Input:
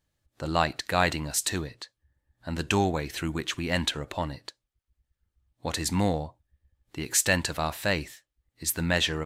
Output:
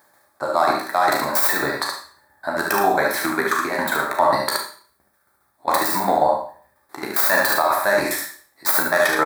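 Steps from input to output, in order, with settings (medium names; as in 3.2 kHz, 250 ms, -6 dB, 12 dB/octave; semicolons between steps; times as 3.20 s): tracing distortion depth 0.21 ms; peaking EQ 6.5 kHz -9.5 dB 0.77 oct; reverse; compression 12:1, threshold -38 dBFS, peak gain reduction 21 dB; reverse; tremolo saw down 7.4 Hz, depth 95%; resonant high-pass 510 Hz, resonance Q 4.9; static phaser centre 1.2 kHz, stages 4; on a send: early reflections 15 ms -7.5 dB, 73 ms -4.5 dB; on the sum: Schroeder reverb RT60 0.46 s, combs from 28 ms, DRR 2 dB; loudness maximiser +33.5 dB; trim -4.5 dB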